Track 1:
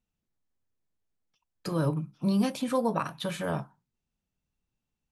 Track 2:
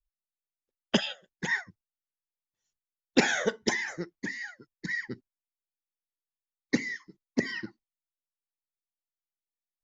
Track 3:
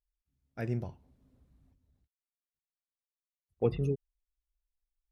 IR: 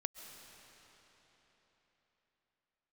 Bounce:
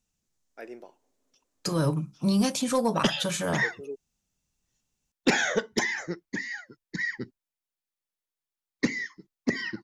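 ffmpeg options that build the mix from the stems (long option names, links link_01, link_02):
-filter_complex "[0:a]equalizer=frequency=6600:width=1.1:gain=13,volume=2.5dB,asplit=2[link_01][link_02];[1:a]adelay=2100,volume=2.5dB[link_03];[2:a]highpass=frequency=340:width=0.5412,highpass=frequency=340:width=1.3066,volume=-1.5dB[link_04];[link_02]apad=whole_len=225729[link_05];[link_04][link_05]sidechaincompress=threshold=-33dB:ratio=8:attack=16:release=351[link_06];[link_01][link_03][link_06]amix=inputs=3:normalize=0,asoftclip=type=tanh:threshold=-12.5dB"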